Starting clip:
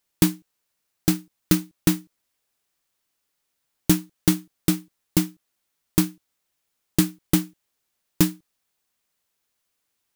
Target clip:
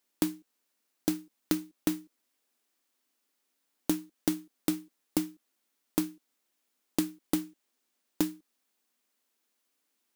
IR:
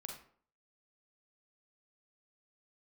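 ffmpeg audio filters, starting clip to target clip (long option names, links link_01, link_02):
-filter_complex "[0:a]asettb=1/sr,asplit=3[link_01][link_02][link_03];[link_01]atrim=end=7.444[link_04];[link_02]atrim=start=7.44:end=8.21,asetpts=PTS-STARTPTS,afade=type=in:duration=0.004:curve=qsin,afade=type=out:start_time=0.766:duration=0.004:curve=qsin,equalizer=frequency=12000:width=7.1:gain=-9[link_05];[link_03]atrim=start=8.206[link_06];[link_04][link_05]acrossfade=duration=0.004:curve1=hsin:curve2=qsin[link_07];[link_07][link_06]acrossfade=duration=0.004:curve1=qsin:curve2=hsin,acompressor=threshold=-25dB:ratio=5,lowshelf=frequency=180:width_type=q:width=3:gain=-10.5,volume=-2dB"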